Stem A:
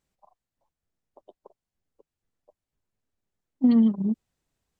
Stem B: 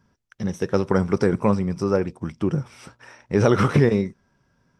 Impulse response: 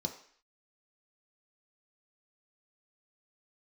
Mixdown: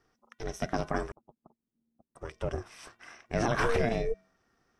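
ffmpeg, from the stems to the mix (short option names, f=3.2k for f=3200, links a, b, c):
-filter_complex "[0:a]lowpass=1.4k,lowshelf=f=260:g=12,volume=-6dB[a];[1:a]lowshelf=f=350:g=-11.5,bandreject=f=420.5:t=h:w=4,bandreject=f=841:t=h:w=4,bandreject=f=1.2615k:t=h:w=4,bandreject=f=1.682k:t=h:w=4,bandreject=f=2.1025k:t=h:w=4,bandreject=f=2.523k:t=h:w=4,bandreject=f=2.9435k:t=h:w=4,bandreject=f=3.364k:t=h:w=4,volume=0dB,asplit=3[b][c][d];[b]atrim=end=1.12,asetpts=PTS-STARTPTS,afade=t=out:st=1.116:d=0.004:c=hsin[e];[c]atrim=start=1.12:end=2.15,asetpts=PTS-STARTPTS,volume=0[f];[d]atrim=start=2.15,asetpts=PTS-STARTPTS,afade=t=in:d=0.004:c=hsin[g];[e][f][g]concat=n=3:v=0:a=1,asplit=2[h][i];[i]apad=whole_len=211358[j];[a][j]sidechaincompress=threshold=-27dB:ratio=8:attack=33:release=366[k];[k][h]amix=inputs=2:normalize=0,aeval=exprs='val(0)*sin(2*PI*230*n/s)':c=same,alimiter=limit=-15.5dB:level=0:latency=1:release=40"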